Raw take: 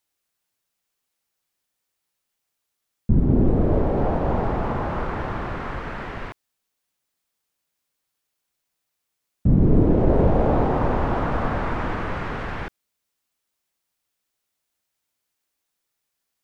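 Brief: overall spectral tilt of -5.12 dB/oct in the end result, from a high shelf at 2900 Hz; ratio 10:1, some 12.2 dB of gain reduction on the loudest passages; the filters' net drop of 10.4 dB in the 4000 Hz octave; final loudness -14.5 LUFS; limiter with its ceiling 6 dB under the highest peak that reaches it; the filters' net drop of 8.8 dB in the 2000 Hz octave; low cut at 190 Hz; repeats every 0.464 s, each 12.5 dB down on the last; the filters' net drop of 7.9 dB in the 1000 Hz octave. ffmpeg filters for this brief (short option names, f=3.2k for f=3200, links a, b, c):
-af "highpass=190,equalizer=f=1k:t=o:g=-9,equalizer=f=2k:t=o:g=-4.5,highshelf=f=2.9k:g=-5.5,equalizer=f=4k:t=o:g=-7.5,acompressor=threshold=-30dB:ratio=10,alimiter=level_in=3.5dB:limit=-24dB:level=0:latency=1,volume=-3.5dB,aecho=1:1:464|928|1392:0.237|0.0569|0.0137,volume=22.5dB"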